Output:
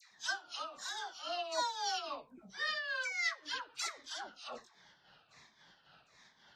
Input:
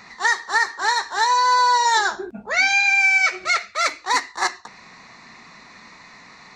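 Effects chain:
pitch shifter swept by a sawtooth −8 semitones, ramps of 758 ms
first-order pre-emphasis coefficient 0.8
all-pass dispersion lows, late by 112 ms, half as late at 1,100 Hz
amplitude tremolo 3.7 Hz, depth 63%
level −5 dB
AAC 64 kbit/s 32,000 Hz

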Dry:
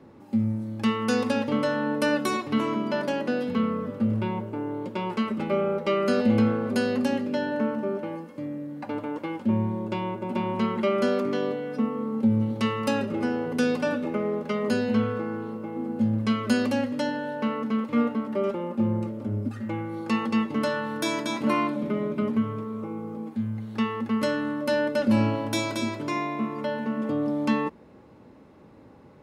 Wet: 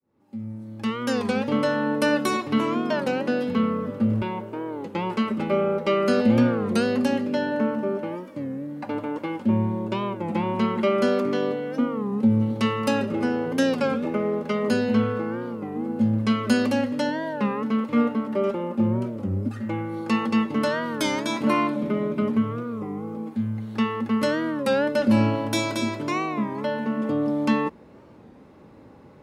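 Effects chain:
fade in at the beginning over 1.60 s
0:04.22–0:04.95: low-shelf EQ 190 Hz −11 dB
wow of a warped record 33 1/3 rpm, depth 160 cents
level +2.5 dB

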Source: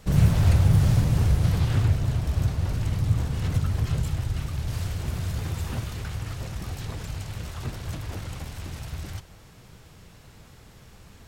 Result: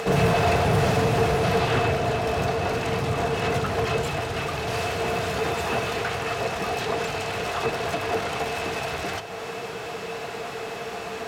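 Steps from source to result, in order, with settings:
high-pass filter 200 Hz 6 dB per octave
in parallel at 0 dB: upward compression, threshold −31 dBFS
on the sum: hollow resonant body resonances 450/690/2,600 Hz, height 14 dB, ringing for 90 ms
mid-hump overdrive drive 21 dB, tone 1,800 Hz, clips at −6 dBFS
on a send at −12 dB: convolution reverb RT60 0.35 s, pre-delay 5 ms
on the sum: level −4.5 dB

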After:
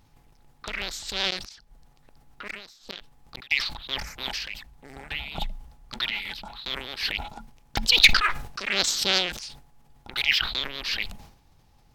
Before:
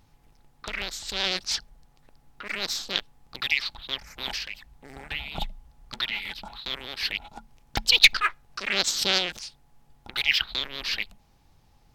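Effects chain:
0:01.30–0:03.51: gate with flip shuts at −20 dBFS, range −26 dB
level that may fall only so fast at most 85 dB per second

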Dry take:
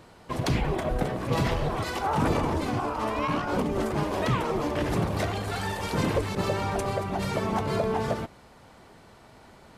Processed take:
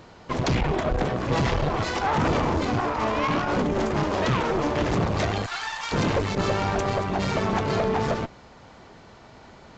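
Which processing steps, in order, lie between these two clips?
0:05.46–0:05.92: high-pass filter 930 Hz 24 dB per octave
tube saturation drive 26 dB, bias 0.7
downsampling to 16,000 Hz
level +8 dB

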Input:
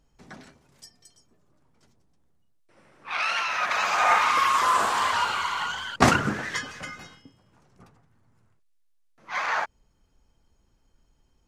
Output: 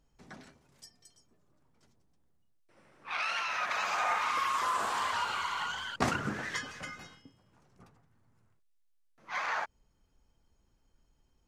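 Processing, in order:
downward compressor 2 to 1, threshold −26 dBFS, peak gain reduction 8 dB
level −5 dB

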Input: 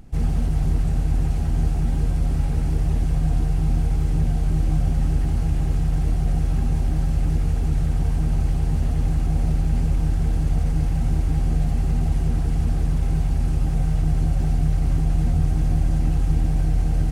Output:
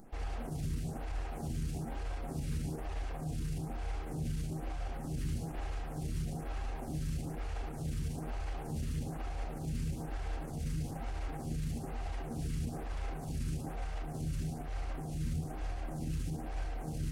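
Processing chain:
low-shelf EQ 230 Hz −10 dB
brickwall limiter −27.5 dBFS, peak gain reduction 10.5 dB
phaser with staggered stages 1.1 Hz
level +1.5 dB

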